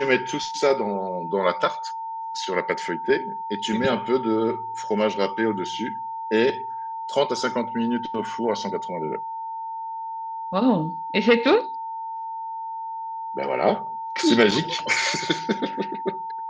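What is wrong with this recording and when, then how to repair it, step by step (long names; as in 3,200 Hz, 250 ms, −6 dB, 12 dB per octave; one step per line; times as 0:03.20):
whistle 900 Hz −29 dBFS
0:14.51: drop-out 4.8 ms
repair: notch filter 900 Hz, Q 30
repair the gap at 0:14.51, 4.8 ms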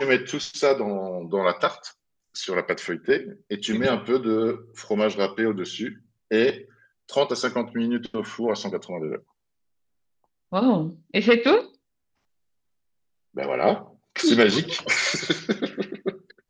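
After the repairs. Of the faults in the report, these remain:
none of them is left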